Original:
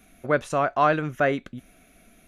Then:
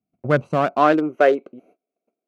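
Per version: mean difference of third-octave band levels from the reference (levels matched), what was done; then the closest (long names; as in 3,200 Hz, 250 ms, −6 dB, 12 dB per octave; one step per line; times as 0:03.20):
6.0 dB: adaptive Wiener filter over 25 samples
noise gate −51 dBFS, range −30 dB
high-pass filter sweep 120 Hz → 420 Hz, 0:00.31–0:01.25
level +3.5 dB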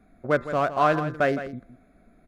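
4.5 dB: adaptive Wiener filter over 15 samples
hum removal 171.5 Hz, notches 12
on a send: single-tap delay 163 ms −12 dB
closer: second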